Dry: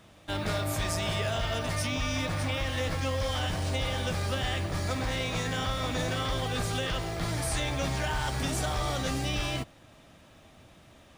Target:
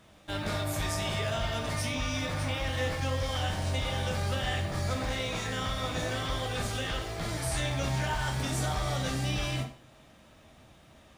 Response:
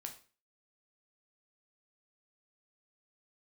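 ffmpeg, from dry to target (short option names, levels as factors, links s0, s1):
-filter_complex "[1:a]atrim=start_sample=2205,asetrate=41013,aresample=44100[s0];[0:a][s0]afir=irnorm=-1:irlink=0,volume=1.26"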